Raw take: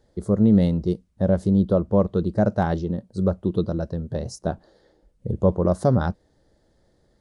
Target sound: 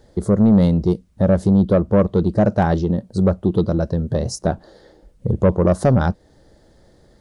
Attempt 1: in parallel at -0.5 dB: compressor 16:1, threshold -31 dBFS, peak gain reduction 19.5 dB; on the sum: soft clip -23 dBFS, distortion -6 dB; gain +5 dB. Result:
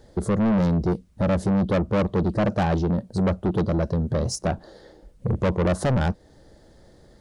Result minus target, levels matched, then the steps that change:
soft clip: distortion +10 dB
change: soft clip -11.5 dBFS, distortion -17 dB

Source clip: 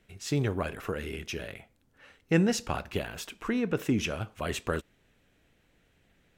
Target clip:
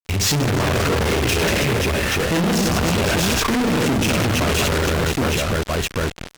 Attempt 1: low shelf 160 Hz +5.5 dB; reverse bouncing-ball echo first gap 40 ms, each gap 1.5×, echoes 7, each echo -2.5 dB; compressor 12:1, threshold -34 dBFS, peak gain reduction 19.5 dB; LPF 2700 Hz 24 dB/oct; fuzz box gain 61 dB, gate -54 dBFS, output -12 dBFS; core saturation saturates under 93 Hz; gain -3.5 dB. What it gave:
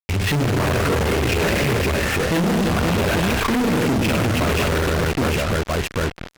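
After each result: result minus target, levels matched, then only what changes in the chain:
compressor: peak gain reduction +6.5 dB; 8000 Hz band -5.5 dB
change: compressor 12:1, threshold -27 dBFS, peak gain reduction 13 dB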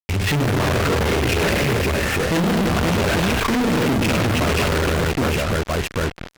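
8000 Hz band -5.0 dB
change: LPF 7500 Hz 24 dB/oct

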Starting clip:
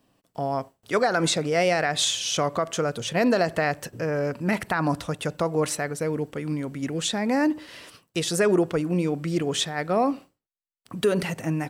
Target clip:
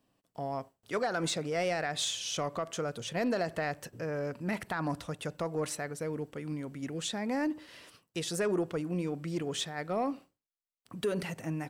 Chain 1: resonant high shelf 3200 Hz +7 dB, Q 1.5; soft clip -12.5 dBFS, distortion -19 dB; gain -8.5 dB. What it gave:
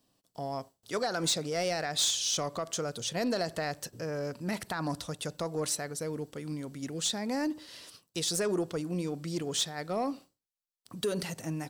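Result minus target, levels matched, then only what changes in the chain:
8000 Hz band +5.5 dB
remove: resonant high shelf 3200 Hz +7 dB, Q 1.5

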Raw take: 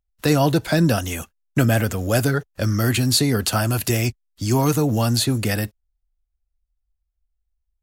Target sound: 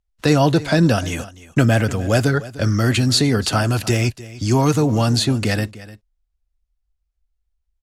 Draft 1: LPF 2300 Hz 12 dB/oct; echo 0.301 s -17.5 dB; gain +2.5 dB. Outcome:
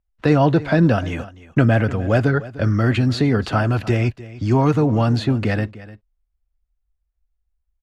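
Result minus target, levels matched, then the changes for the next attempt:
8000 Hz band -17.0 dB
change: LPF 7300 Hz 12 dB/oct

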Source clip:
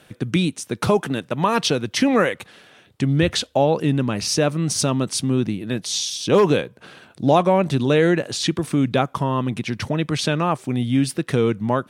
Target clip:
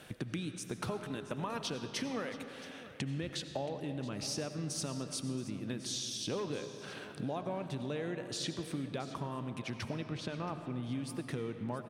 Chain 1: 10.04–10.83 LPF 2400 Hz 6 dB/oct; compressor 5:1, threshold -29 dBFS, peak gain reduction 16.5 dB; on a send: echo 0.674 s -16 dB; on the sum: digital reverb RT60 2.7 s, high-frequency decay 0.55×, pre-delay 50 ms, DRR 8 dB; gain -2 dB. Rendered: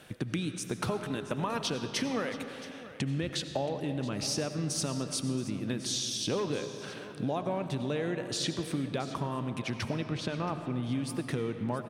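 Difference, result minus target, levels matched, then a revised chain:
compressor: peak gain reduction -5.5 dB
10.04–10.83 LPF 2400 Hz 6 dB/oct; compressor 5:1, threshold -36 dBFS, peak gain reduction 22 dB; on a send: echo 0.674 s -16 dB; on the sum: digital reverb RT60 2.7 s, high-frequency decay 0.55×, pre-delay 50 ms, DRR 8 dB; gain -2 dB

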